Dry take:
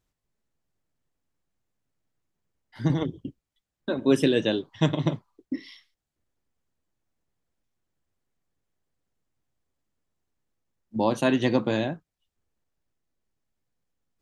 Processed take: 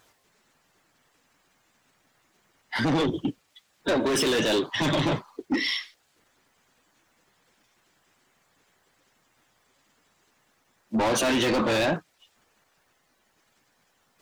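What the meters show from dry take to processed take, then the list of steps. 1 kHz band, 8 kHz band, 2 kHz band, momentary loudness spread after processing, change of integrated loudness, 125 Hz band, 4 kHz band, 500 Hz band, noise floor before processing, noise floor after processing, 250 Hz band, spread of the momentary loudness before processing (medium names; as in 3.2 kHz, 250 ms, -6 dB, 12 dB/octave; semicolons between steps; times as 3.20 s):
+4.5 dB, +12.5 dB, +6.5 dB, 10 LU, +0.5 dB, -3.5 dB, +7.0 dB, +1.0 dB, under -85 dBFS, -69 dBFS, -0.5 dB, 16 LU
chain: coarse spectral quantiser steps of 15 dB; overdrive pedal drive 31 dB, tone 6.1 kHz, clips at -8.5 dBFS; peak limiter -19 dBFS, peak gain reduction 10.5 dB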